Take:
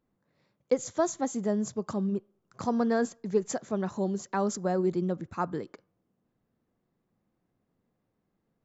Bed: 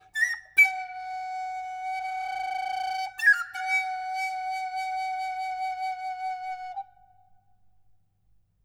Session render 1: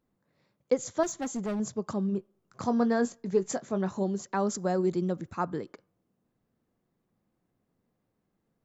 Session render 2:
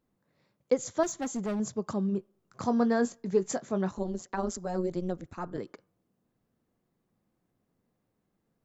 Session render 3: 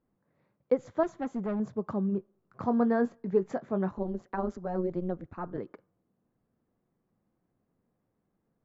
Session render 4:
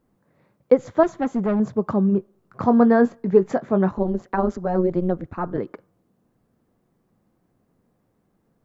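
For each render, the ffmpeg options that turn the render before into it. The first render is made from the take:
ffmpeg -i in.wav -filter_complex "[0:a]asettb=1/sr,asplit=3[link_01][link_02][link_03];[link_01]atrim=end=1.034[link_04];[link_02]atrim=start=1.03:end=1.6,asetpts=PTS-STARTPTS,afade=type=in:duration=0.004:curve=qsin,afade=type=out:start_time=0.566:duration=0.004:curve=qsin,asoftclip=type=hard:threshold=-28.5dB[link_05];[link_03]atrim=start=1.596[link_06];[link_04][link_05]acrossfade=duration=0.004:curve1=hsin:curve2=qsin[link_07];[link_07][link_06]acrossfade=duration=0.004:curve1=qsin:curve2=hsin,asettb=1/sr,asplit=3[link_08][link_09][link_10];[link_08]atrim=end=2.124[link_11];[link_09]atrim=start=2.12:end=4.03,asetpts=PTS-STARTPTS,afade=type=in:duration=0.004:curve=qsin,afade=type=out:start_time=1.906:duration=0.004:curve=qsin,asplit=2[link_12][link_13];[link_13]adelay=21,volume=-11dB[link_14];[link_12][link_14]amix=inputs=2:normalize=0,atrim=end_sample=84231[link_15];[link_10]atrim=start=4.026[link_16];[link_11][link_15]acrossfade=duration=0.004:curve1=hsin:curve2=qsin[link_17];[link_17][link_16]acrossfade=duration=0.004:curve1=qsin:curve2=hsin,asettb=1/sr,asplit=3[link_18][link_19][link_20];[link_18]atrim=end=4.554[link_21];[link_19]atrim=start=4.55:end=5.33,asetpts=PTS-STARTPTS,afade=type=in:duration=0.004:curve=qsin,afade=type=out:start_time=0.776:duration=0.004:curve=qsin,highshelf=frequency=5000:gain=8.5[link_22];[link_20]atrim=start=5.326[link_23];[link_21][link_22]acrossfade=duration=0.004:curve1=hsin:curve2=qsin[link_24];[link_24][link_23]acrossfade=duration=0.004:curve1=qsin:curve2=hsin" out.wav
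ffmpeg -i in.wav -filter_complex "[0:a]asettb=1/sr,asplit=3[link_01][link_02][link_03];[link_01]atrim=end=3.914[link_04];[link_02]atrim=start=3.91:end=5.58,asetpts=PTS-STARTPTS,afade=type=in:duration=0.004:curve=qsin,afade=type=out:start_time=1.666:duration=0.004:curve=qsin,tremolo=f=180:d=0.824[link_05];[link_03]atrim=start=5.576[link_06];[link_04][link_05]acrossfade=duration=0.004:curve1=hsin:curve2=qsin[link_07];[link_07][link_06]acrossfade=duration=0.004:curve1=qsin:curve2=hsin" out.wav
ffmpeg -i in.wav -af "lowpass=1800" out.wav
ffmpeg -i in.wav -af "volume=10.5dB" out.wav

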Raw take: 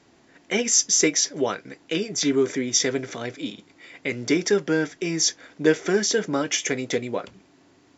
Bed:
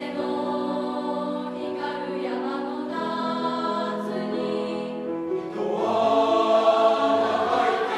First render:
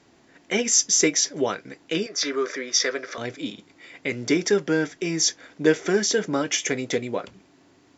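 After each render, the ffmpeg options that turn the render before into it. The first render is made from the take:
ffmpeg -i in.wav -filter_complex "[0:a]asettb=1/sr,asplit=3[link_01][link_02][link_03];[link_01]atrim=end=2.064[link_04];[link_02]atrim=start=2.06:end=3.18,asetpts=PTS-STARTPTS,afade=type=in:duration=0.004:curve=qsin,afade=type=out:start_time=1.116:duration=0.004:curve=qsin,highpass=490,equalizer=frequency=550:width_type=q:width=4:gain=6,equalizer=frequency=830:width_type=q:width=4:gain=-8,equalizer=frequency=1200:width_type=q:width=4:gain=9,equalizer=frequency=1700:width_type=q:width=4:gain=5,equalizer=frequency=3100:width_type=q:width=4:gain=-4,equalizer=frequency=5000:width_type=q:width=4:gain=5,lowpass=frequency=6000:width=0.5412,lowpass=frequency=6000:width=1.3066[link_05];[link_03]atrim=start=3.176[link_06];[link_04][link_05]acrossfade=duration=0.004:curve1=hsin:curve2=qsin[link_07];[link_07][link_06]acrossfade=duration=0.004:curve1=qsin:curve2=hsin" out.wav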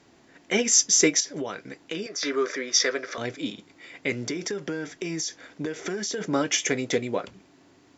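ffmpeg -i in.wav -filter_complex "[0:a]asettb=1/sr,asplit=3[link_01][link_02][link_03];[link_01]atrim=end=1.204[link_04];[link_02]atrim=start=1.2:end=2.23,asetpts=PTS-STARTPTS,afade=type=in:duration=0.004:curve=qsin,afade=type=out:start_time=1.026:duration=0.004:curve=qsin,acompressor=threshold=-27dB:ratio=6:attack=3.2:release=140:knee=1:detection=peak[link_05];[link_03]atrim=start=2.226[link_06];[link_04][link_05]acrossfade=duration=0.004:curve1=hsin:curve2=qsin[link_07];[link_07][link_06]acrossfade=duration=0.004:curve1=qsin:curve2=hsin,asplit=3[link_08][link_09][link_10];[link_08]afade=type=out:start_time=4.25:duration=0.02[link_11];[link_09]acompressor=threshold=-26dB:ratio=12:attack=3.2:release=140:knee=1:detection=peak,afade=type=in:start_time=4.25:duration=0.02,afade=type=out:start_time=6.2:duration=0.02[link_12];[link_10]afade=type=in:start_time=6.2:duration=0.02[link_13];[link_11][link_12][link_13]amix=inputs=3:normalize=0" out.wav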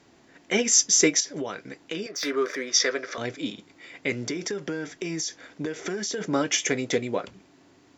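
ffmpeg -i in.wav -filter_complex "[0:a]asettb=1/sr,asplit=3[link_01][link_02][link_03];[link_01]atrim=end=2.114[link_04];[link_02]atrim=start=2.11:end=2.67,asetpts=PTS-STARTPTS,afade=type=in:duration=0.004:curve=qsin,afade=type=out:start_time=0.556:duration=0.004:curve=qsin,adynamicsmooth=sensitivity=7:basefreq=4900[link_05];[link_03]atrim=start=2.666[link_06];[link_04][link_05]acrossfade=duration=0.004:curve1=hsin:curve2=qsin[link_07];[link_07][link_06]acrossfade=duration=0.004:curve1=qsin:curve2=hsin" out.wav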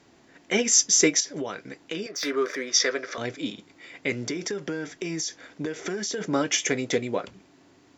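ffmpeg -i in.wav -af anull out.wav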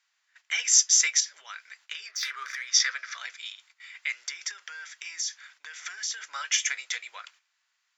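ffmpeg -i in.wav -af "highpass=frequency=1300:width=0.5412,highpass=frequency=1300:width=1.3066,agate=range=-11dB:threshold=-56dB:ratio=16:detection=peak" out.wav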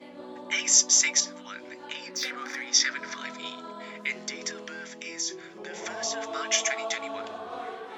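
ffmpeg -i in.wav -i bed.wav -filter_complex "[1:a]volume=-15.5dB[link_01];[0:a][link_01]amix=inputs=2:normalize=0" out.wav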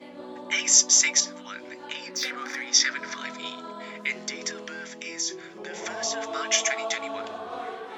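ffmpeg -i in.wav -af "volume=2dB" out.wav

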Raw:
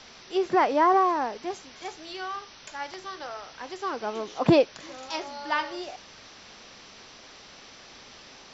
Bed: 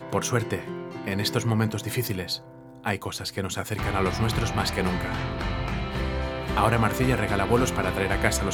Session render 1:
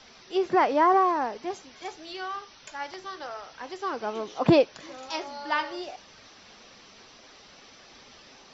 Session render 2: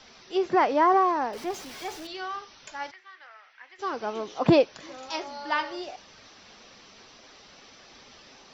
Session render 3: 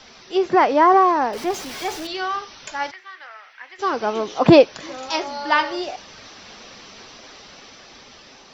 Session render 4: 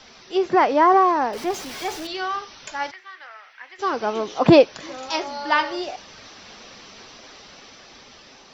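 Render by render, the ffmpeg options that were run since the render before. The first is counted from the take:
ffmpeg -i in.wav -af "afftdn=noise_reduction=6:noise_floor=-49" out.wav
ffmpeg -i in.wav -filter_complex "[0:a]asettb=1/sr,asplit=3[link_01][link_02][link_03];[link_01]atrim=end=1.334[link_04];[link_02]atrim=start=1.33:end=2.07,asetpts=PTS-STARTPTS,afade=type=in:duration=0.004:curve=qsin,afade=type=out:start_time=0.736:duration=0.004:curve=qsin,aeval=exprs='val(0)+0.5*0.0106*sgn(val(0))':channel_layout=same[link_05];[link_03]atrim=start=2.066[link_06];[link_04][link_05]acrossfade=duration=0.004:curve1=hsin:curve2=qsin[link_07];[link_07][link_06]acrossfade=duration=0.004:curve1=qsin:curve2=hsin,asplit=3[link_08][link_09][link_10];[link_08]afade=type=out:start_time=2.9:duration=0.02[link_11];[link_09]bandpass=frequency=2000:width_type=q:width=3.2,afade=type=in:start_time=2.9:duration=0.02,afade=type=out:start_time=3.78:duration=0.02[link_12];[link_10]afade=type=in:start_time=3.78:duration=0.02[link_13];[link_11][link_12][link_13]amix=inputs=3:normalize=0" out.wav
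ffmpeg -i in.wav -af "dynaudnorm=framelen=290:gausssize=9:maxgain=3.5dB,alimiter=level_in=6dB:limit=-1dB:release=50:level=0:latency=1" out.wav
ffmpeg -i in.wav -af "volume=-1.5dB" out.wav

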